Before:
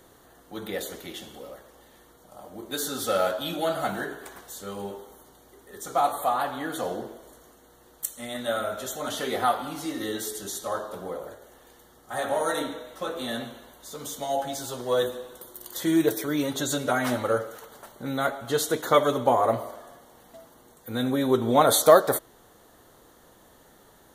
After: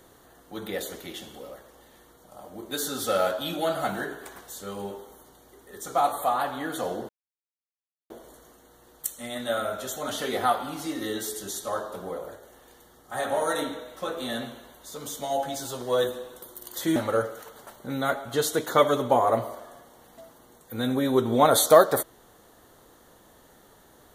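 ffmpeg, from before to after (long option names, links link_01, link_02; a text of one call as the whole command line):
ffmpeg -i in.wav -filter_complex "[0:a]asplit=3[link_01][link_02][link_03];[link_01]atrim=end=7.09,asetpts=PTS-STARTPTS,afade=type=out:start_time=7.086:duration=0.004:curve=hsin,apad=pad_dur=1.01[link_04];[link_02]atrim=start=7.09:end=15.952,asetpts=PTS-STARTPTS,afade=type=in:duration=0.004:curve=hsin[link_05];[link_03]atrim=start=17.118[link_06];[link_04][link_05]concat=n=2:v=0:a=1[link_07];[link_07][link_06]acrossfade=duration=0.004:curve1=hsin:curve2=hsin" out.wav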